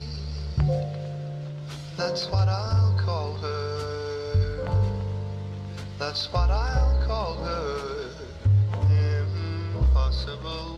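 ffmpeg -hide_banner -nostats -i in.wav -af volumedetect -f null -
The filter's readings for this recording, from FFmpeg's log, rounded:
mean_volume: -25.1 dB
max_volume: -13.1 dB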